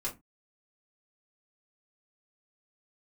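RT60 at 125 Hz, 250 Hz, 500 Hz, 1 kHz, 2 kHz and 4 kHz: 0.30, 0.30, 0.20, 0.20, 0.15, 0.15 seconds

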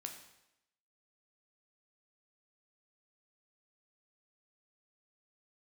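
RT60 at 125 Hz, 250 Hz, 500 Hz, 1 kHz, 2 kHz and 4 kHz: 0.80, 0.85, 0.90, 0.85, 0.85, 0.80 seconds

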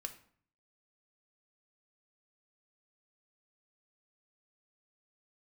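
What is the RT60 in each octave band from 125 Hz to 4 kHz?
0.75, 0.70, 0.55, 0.55, 0.50, 0.40 seconds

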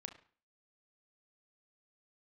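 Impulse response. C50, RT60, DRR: 11.5 dB, 0.40 s, 5.5 dB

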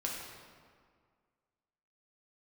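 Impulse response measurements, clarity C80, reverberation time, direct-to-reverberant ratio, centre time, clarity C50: 2.5 dB, 1.9 s, −3.0 dB, 82 ms, 1.0 dB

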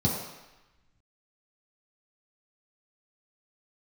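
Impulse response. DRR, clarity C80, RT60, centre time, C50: −6.5 dB, 4.5 dB, 1.0 s, 59 ms, 2.5 dB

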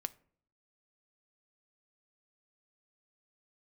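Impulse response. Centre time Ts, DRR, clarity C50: 2 ms, 12.5 dB, 21.5 dB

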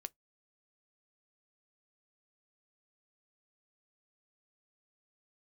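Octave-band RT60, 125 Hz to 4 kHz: 0.15, 0.15, 0.15, 0.15, 0.10, 0.10 seconds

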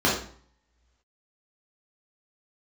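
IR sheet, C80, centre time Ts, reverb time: 8.5 dB, 39 ms, 0.50 s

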